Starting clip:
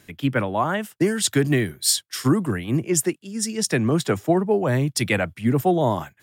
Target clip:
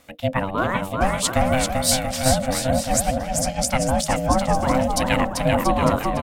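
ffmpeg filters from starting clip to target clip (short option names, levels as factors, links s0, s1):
-af "aecho=1:1:390|682.5|901.9|1066|1190:0.631|0.398|0.251|0.158|0.1,aeval=exprs='val(0)*sin(2*PI*390*n/s)':c=same,volume=1.26"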